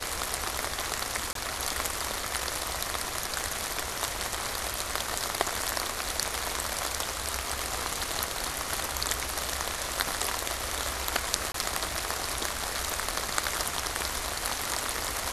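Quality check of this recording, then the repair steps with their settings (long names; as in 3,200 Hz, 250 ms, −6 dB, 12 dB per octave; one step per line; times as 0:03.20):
0:01.33–0:01.35: drop-out 23 ms
0:11.52–0:11.54: drop-out 23 ms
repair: repair the gap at 0:01.33, 23 ms
repair the gap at 0:11.52, 23 ms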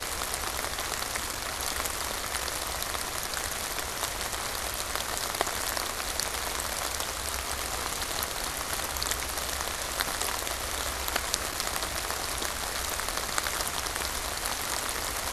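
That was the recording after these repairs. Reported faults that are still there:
none of them is left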